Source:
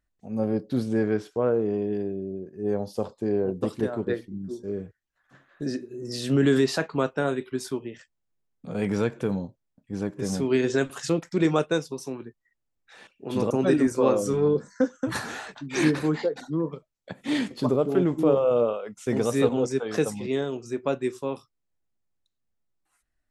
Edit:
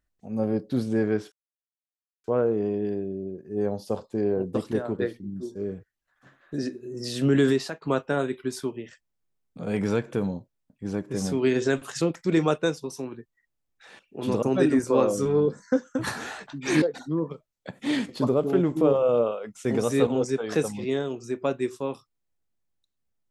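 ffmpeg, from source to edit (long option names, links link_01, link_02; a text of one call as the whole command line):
ffmpeg -i in.wav -filter_complex "[0:a]asplit=4[link_01][link_02][link_03][link_04];[link_01]atrim=end=1.32,asetpts=PTS-STARTPTS,afade=type=out:start_time=1.316:duration=0.004:curve=hsin,apad=pad_dur=0.92[link_05];[link_02]atrim=start=1.32:end=6.9,asetpts=PTS-STARTPTS,afade=type=in:duration=0.004:curve=hsin,afade=type=out:start_time=5.24:duration=0.34:silence=0.0891251[link_06];[link_03]atrim=start=6.9:end=15.902,asetpts=PTS-STARTPTS,afade=type=in:duration=0.004:curve=hsin:silence=0.0891251[link_07];[link_04]atrim=start=16.238[link_08];[link_05][link_06][link_07]concat=n=3:v=0:a=1[link_09];[link_09][link_08]acrossfade=duration=0.004:curve1=hsin:curve2=hsin" out.wav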